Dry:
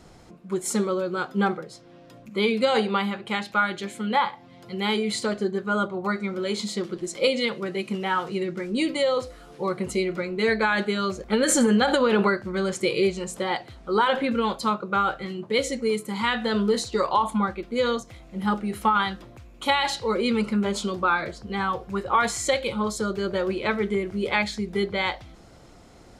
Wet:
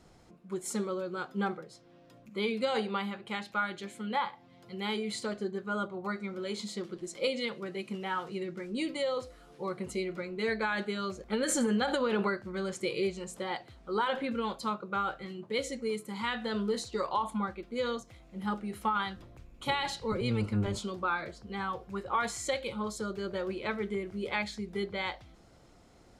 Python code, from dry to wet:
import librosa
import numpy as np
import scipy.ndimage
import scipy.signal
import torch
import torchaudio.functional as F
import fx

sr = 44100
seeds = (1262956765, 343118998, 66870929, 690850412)

y = fx.octave_divider(x, sr, octaves=1, level_db=1.0, at=(19.15, 20.79))
y = y * 10.0 ** (-9.0 / 20.0)